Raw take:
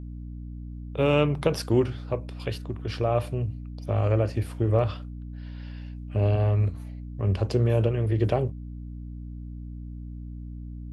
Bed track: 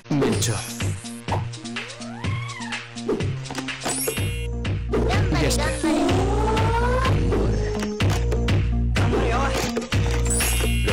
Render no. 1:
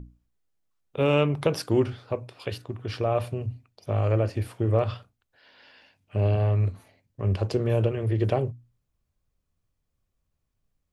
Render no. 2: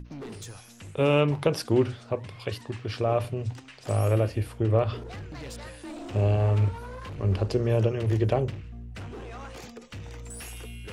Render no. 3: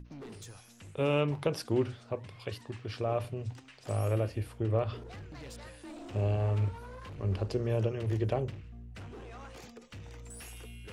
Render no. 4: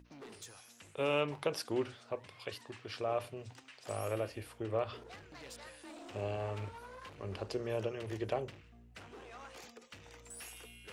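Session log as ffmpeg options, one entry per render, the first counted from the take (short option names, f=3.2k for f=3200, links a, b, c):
-af "bandreject=f=60:t=h:w=6,bandreject=f=120:t=h:w=6,bandreject=f=180:t=h:w=6,bandreject=f=240:t=h:w=6,bandreject=f=300:t=h:w=6"
-filter_complex "[1:a]volume=-19dB[a];[0:a][a]amix=inputs=2:normalize=0"
-af "volume=-6.5dB"
-af "highpass=48,equalizer=f=95:w=0.37:g=-13.5"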